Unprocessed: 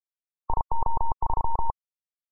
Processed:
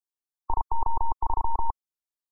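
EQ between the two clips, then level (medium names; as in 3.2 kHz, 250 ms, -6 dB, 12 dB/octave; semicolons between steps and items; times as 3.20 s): static phaser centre 540 Hz, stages 6; 0.0 dB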